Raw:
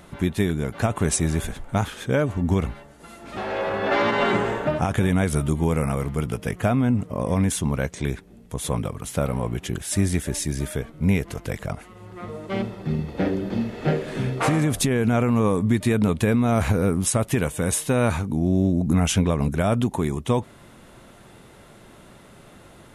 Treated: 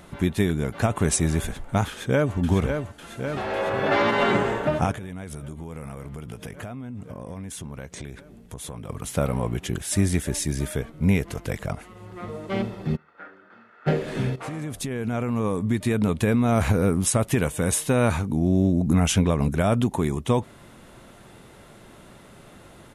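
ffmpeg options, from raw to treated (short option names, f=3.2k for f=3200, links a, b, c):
-filter_complex "[0:a]asplit=2[a][b];[b]afade=t=in:st=1.88:d=0.01,afade=t=out:st=2.36:d=0.01,aecho=0:1:550|1100|1650|2200|2750|3300|3850|4400|4950|5500|6050|6600:0.501187|0.37589|0.281918|0.211438|0.158579|0.118934|0.0892006|0.0669004|0.0501753|0.0376315|0.0282236|0.0211677[c];[a][c]amix=inputs=2:normalize=0,asettb=1/sr,asplit=3[d][e][f];[d]atrim=end=4.914[g];[e]atrim=start=4.91:end=8.89,asetpts=PTS-STARTPTS,afade=t=in:d=0.004:c=qsin,afade=t=out:st=3.976:d=0.004:c=qsin,acompressor=threshold=-32dB:ratio=10:attack=3.2:release=140:knee=1:detection=peak[h];[f]atrim=start=8.886[i];[g][h]acrossfade=d=0.004:c1=hsin:c2=qsin[j];[j][i]acrossfade=d=0.004:c1=qsin:c2=hsin,asplit=3[k][l][m];[k]afade=t=out:st=12.95:d=0.02[n];[l]bandpass=f=1.4k:t=q:w=6.5,afade=t=in:st=12.95:d=0.02,afade=t=out:st=13.86:d=0.02[o];[m]afade=t=in:st=13.86:d=0.02[p];[n][o][p]amix=inputs=3:normalize=0,asplit=2[q][r];[q]atrim=end=14.36,asetpts=PTS-STARTPTS,afade=t=out:st=14.356:d=0.004:c=hsin:silence=0.188365[s];[r]atrim=start=14.36,asetpts=PTS-STARTPTS,afade=t=in:d=2.27:silence=0.188365[t];[s][t]concat=n=2:v=0:a=1"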